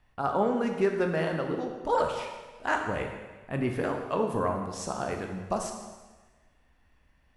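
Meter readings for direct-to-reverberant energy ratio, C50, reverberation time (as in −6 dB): 3.0 dB, 5.0 dB, 1.3 s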